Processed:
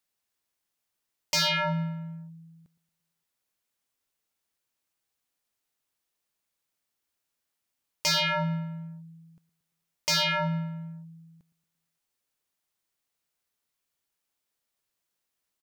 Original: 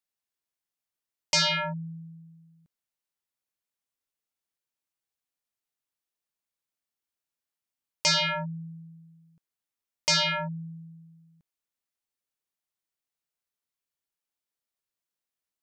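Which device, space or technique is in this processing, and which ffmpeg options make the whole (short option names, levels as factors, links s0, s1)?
clipper into limiter: -filter_complex "[0:a]asplit=2[s0][s1];[s1]adelay=114,lowpass=f=2600:p=1,volume=0.126,asplit=2[s2][s3];[s3]adelay=114,lowpass=f=2600:p=1,volume=0.54,asplit=2[s4][s5];[s5]adelay=114,lowpass=f=2600:p=1,volume=0.54,asplit=2[s6][s7];[s7]adelay=114,lowpass=f=2600:p=1,volume=0.54,asplit=2[s8][s9];[s9]adelay=114,lowpass=f=2600:p=1,volume=0.54[s10];[s0][s2][s4][s6][s8][s10]amix=inputs=6:normalize=0,asoftclip=type=hard:threshold=0.075,alimiter=level_in=1.88:limit=0.0631:level=0:latency=1,volume=0.531,volume=2.24"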